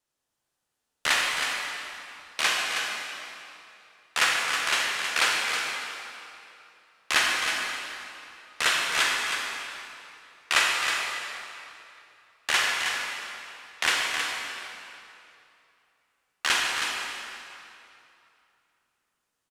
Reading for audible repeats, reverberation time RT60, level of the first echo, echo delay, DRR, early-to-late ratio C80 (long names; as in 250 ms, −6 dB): 1, 2.8 s, −7.5 dB, 318 ms, −2.0 dB, 0.0 dB